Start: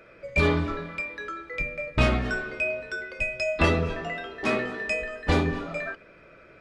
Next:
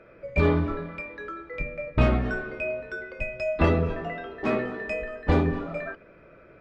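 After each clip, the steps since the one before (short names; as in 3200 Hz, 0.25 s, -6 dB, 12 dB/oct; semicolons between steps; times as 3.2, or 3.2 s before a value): LPF 1100 Hz 6 dB/oct; gain +2 dB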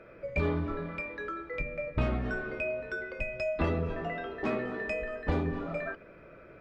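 compressor 2:1, threshold -32 dBFS, peak gain reduction 9.5 dB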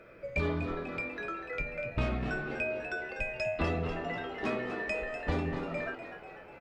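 high shelf 3100 Hz +9 dB; on a send: frequency-shifting echo 0.246 s, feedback 55%, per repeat +86 Hz, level -10 dB; on the sum: gain -2.5 dB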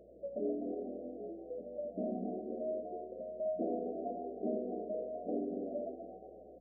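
FFT band-pass 180–760 Hz; hum 60 Hz, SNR 30 dB; gain -1.5 dB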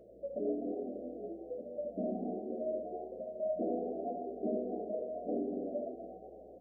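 flange 1.2 Hz, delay 7 ms, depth 9.4 ms, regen -63%; gain +5.5 dB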